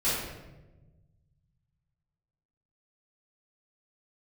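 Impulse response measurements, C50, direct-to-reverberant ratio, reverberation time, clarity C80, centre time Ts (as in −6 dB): −0.5 dB, −13.0 dB, 1.1 s, 2.5 dB, 78 ms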